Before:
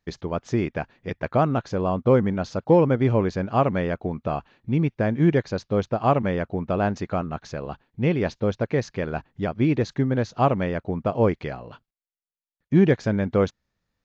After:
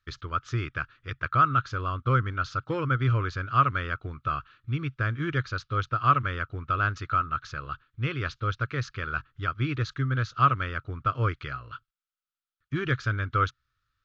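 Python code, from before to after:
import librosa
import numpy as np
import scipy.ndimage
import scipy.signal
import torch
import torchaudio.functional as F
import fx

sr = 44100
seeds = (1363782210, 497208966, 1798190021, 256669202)

y = fx.curve_eq(x, sr, hz=(130.0, 190.0, 280.0, 450.0, 840.0, 1300.0, 1900.0, 3300.0, 5900.0, 10000.0), db=(0, -23, -11, -14, -20, 13, -3, 3, -4, -9))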